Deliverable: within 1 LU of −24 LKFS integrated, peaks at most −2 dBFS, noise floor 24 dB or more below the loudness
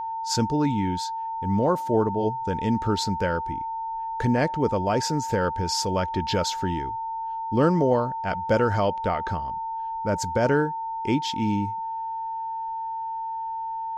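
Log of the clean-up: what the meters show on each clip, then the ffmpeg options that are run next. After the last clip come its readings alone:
interfering tone 900 Hz; level of the tone −28 dBFS; integrated loudness −25.5 LKFS; sample peak −8.0 dBFS; target loudness −24.0 LKFS
→ -af "bandreject=frequency=900:width=30"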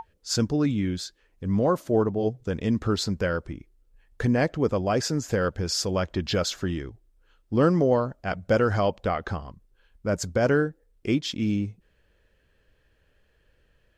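interfering tone none found; integrated loudness −26.0 LKFS; sample peak −8.5 dBFS; target loudness −24.0 LKFS
→ -af "volume=2dB"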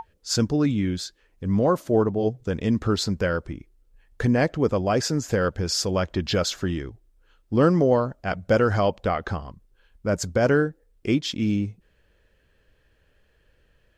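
integrated loudness −24.0 LKFS; sample peak −6.5 dBFS; background noise floor −64 dBFS

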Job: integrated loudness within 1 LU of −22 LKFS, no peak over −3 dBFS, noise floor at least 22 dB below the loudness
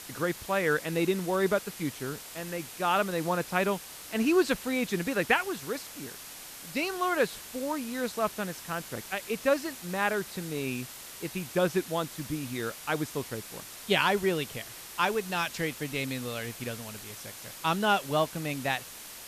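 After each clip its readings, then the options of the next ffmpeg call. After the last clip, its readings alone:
background noise floor −45 dBFS; target noise floor −53 dBFS; integrated loudness −30.5 LKFS; sample peak −8.0 dBFS; target loudness −22.0 LKFS
→ -af "afftdn=noise_reduction=8:noise_floor=-45"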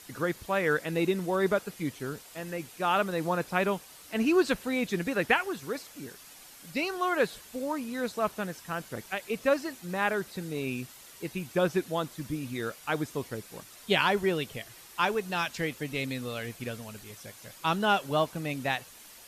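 background noise floor −51 dBFS; target noise floor −53 dBFS
→ -af "afftdn=noise_reduction=6:noise_floor=-51"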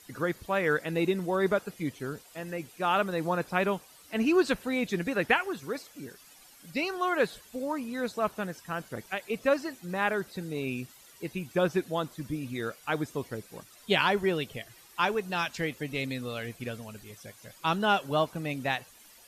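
background noise floor −55 dBFS; integrated loudness −30.5 LKFS; sample peak −8.0 dBFS; target loudness −22.0 LKFS
→ -af "volume=8.5dB,alimiter=limit=-3dB:level=0:latency=1"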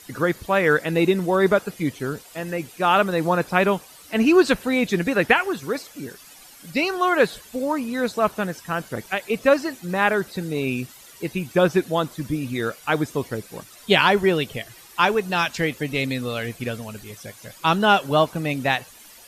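integrated loudness −22.0 LKFS; sample peak −3.0 dBFS; background noise floor −47 dBFS

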